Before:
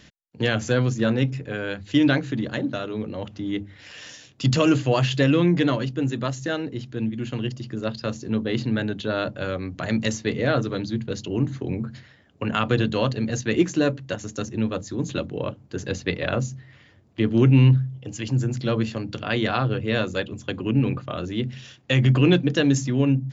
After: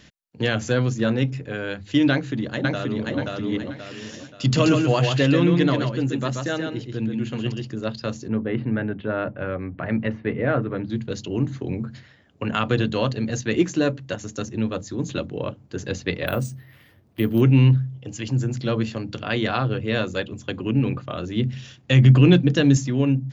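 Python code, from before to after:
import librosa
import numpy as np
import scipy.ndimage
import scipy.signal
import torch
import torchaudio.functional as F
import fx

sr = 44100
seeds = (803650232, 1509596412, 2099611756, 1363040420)

y = fx.echo_throw(x, sr, start_s=2.11, length_s=1.06, ms=530, feedback_pct=40, wet_db=-1.5)
y = fx.echo_single(y, sr, ms=132, db=-5.0, at=(4.55, 7.71), fade=0.02)
y = fx.lowpass(y, sr, hz=2300.0, slope=24, at=(8.28, 10.9))
y = fx.resample_bad(y, sr, factor=3, down='filtered', up='hold', at=(16.27, 17.41))
y = fx.bass_treble(y, sr, bass_db=6, treble_db=1, at=(21.36, 22.77))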